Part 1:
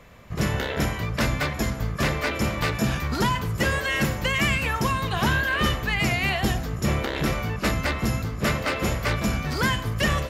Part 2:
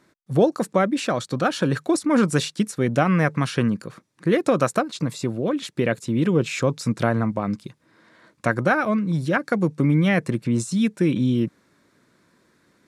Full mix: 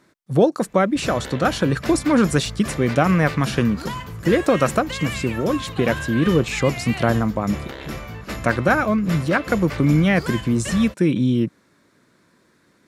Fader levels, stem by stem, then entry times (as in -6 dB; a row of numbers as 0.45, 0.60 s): -6.5, +2.0 dB; 0.65, 0.00 s